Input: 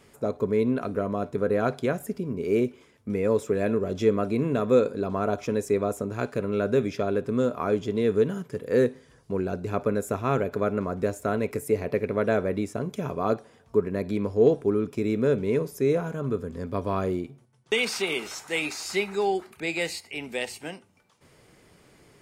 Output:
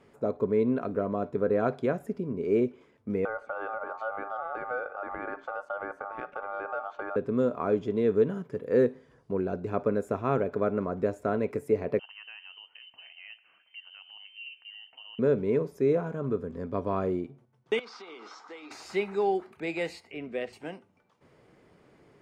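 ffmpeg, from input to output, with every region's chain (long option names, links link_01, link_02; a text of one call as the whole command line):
ffmpeg -i in.wav -filter_complex "[0:a]asettb=1/sr,asplit=3[link_01][link_02][link_03];[link_01]atrim=end=3.254[link_04];[link_02]atrim=start=3.25:end=7.16,asetpts=PTS-STARTPTS,afade=type=in:duration=0.004:curve=qsin,afade=type=out:start_time=3.906:duration=0.004:curve=qsin,lowpass=frequency=1300:poles=1,aeval=exprs='val(0)*sin(2*PI*1000*n/s)':channel_layout=same,acompressor=threshold=-29dB:ratio=2.5:attack=3.2:release=140:knee=1:detection=peak[link_05];[link_03]atrim=start=7.156[link_06];[link_04][link_05]acrossfade=duration=0.004:curve1=hsin:curve2=qsin[link_07];[link_07][link_06]acrossfade=duration=0.004:curve1=qsin:curve2=hsin,asettb=1/sr,asplit=3[link_08][link_09][link_10];[link_08]atrim=end=11.994[link_11];[link_09]atrim=start=11.99:end=15.19,asetpts=PTS-STARTPTS,afade=type=in:duration=0.004:curve=qsin,afade=type=out:start_time=3.196:duration=0.004:curve=qsin,acompressor=threshold=-48dB:ratio=2:attack=3.2:release=140:knee=1:detection=peak,lowpass=frequency=2700:width_type=q:width=0.5098,lowpass=frequency=2700:width_type=q:width=0.6013,lowpass=frequency=2700:width_type=q:width=0.9,lowpass=frequency=2700:width_type=q:width=2.563,afreqshift=-3200[link_12];[link_10]atrim=start=15.186[link_13];[link_11][link_12]acrossfade=duration=0.004:curve1=hsin:curve2=qsin[link_14];[link_14][link_13]acrossfade=duration=0.004:curve1=qsin:curve2=hsin,asettb=1/sr,asplit=3[link_15][link_16][link_17];[link_15]atrim=end=17.794[link_18];[link_16]atrim=start=17.79:end=18.71,asetpts=PTS-STARTPTS,afade=type=in:duration=0.004:curve=qsin,afade=type=out:start_time=0.916:duration=0.004:curve=qsin,acompressor=threshold=-34dB:ratio=4:attack=3.2:release=140:knee=1:detection=peak,highpass=frequency=280:width=0.5412,highpass=frequency=280:width=1.3066,equalizer=frequency=380:width_type=q:width=4:gain=-8,equalizer=frequency=600:width_type=q:width=4:gain=-9,equalizer=frequency=1200:width_type=q:width=4:gain=7,equalizer=frequency=1800:width_type=q:width=4:gain=-5,equalizer=frequency=2600:width_type=q:width=4:gain=-9,equalizer=frequency=5000:width_type=q:width=4:gain=4,lowpass=frequency=6000:width=0.5412,lowpass=frequency=6000:width=1.3066[link_19];[link_17]atrim=start=18.706[link_20];[link_18][link_19]acrossfade=duration=0.004:curve1=hsin:curve2=qsin[link_21];[link_21][link_20]acrossfade=duration=0.004:curve1=qsin:curve2=hsin,asettb=1/sr,asplit=3[link_22][link_23][link_24];[link_22]atrim=end=20.124[link_25];[link_23]atrim=start=20.12:end=20.53,asetpts=PTS-STARTPTS,afade=type=in:duration=0.004:curve=qsin,afade=type=out:start_time=0.406:duration=0.004:curve=qsin,asuperstop=centerf=870:order=4:qfactor=3.6,aemphasis=mode=reproduction:type=75fm[link_26];[link_24]atrim=start=20.526[link_27];[link_25][link_26]acrossfade=duration=0.004:curve1=hsin:curve2=qsin[link_28];[link_28][link_27]acrossfade=duration=0.004:curve1=qsin:curve2=hsin,lowpass=frequency=1200:poles=1,lowshelf=frequency=110:gain=-9.5" out.wav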